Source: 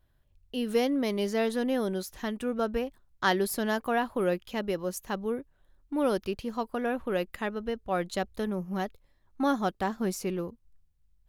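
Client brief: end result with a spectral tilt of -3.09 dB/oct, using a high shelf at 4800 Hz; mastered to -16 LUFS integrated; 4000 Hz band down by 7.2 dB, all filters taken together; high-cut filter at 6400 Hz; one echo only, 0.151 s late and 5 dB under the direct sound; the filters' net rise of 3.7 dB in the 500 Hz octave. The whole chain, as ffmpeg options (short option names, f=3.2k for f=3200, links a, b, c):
-af "lowpass=6.4k,equalizer=f=500:t=o:g=4.5,equalizer=f=4k:t=o:g=-7,highshelf=f=4.8k:g=-6.5,aecho=1:1:151:0.562,volume=11.5dB"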